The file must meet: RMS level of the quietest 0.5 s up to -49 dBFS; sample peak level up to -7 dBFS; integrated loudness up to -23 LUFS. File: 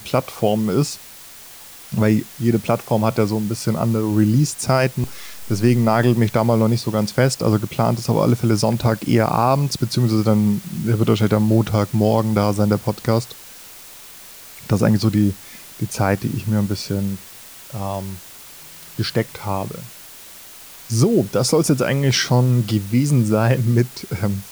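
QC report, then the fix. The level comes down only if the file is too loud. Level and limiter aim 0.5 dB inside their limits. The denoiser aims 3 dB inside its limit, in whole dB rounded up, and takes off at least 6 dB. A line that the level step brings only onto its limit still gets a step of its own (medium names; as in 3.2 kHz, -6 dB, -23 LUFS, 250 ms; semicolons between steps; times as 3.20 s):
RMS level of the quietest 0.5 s -40 dBFS: fail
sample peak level -3.5 dBFS: fail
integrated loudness -19.0 LUFS: fail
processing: noise reduction 8 dB, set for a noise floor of -40 dBFS; trim -4.5 dB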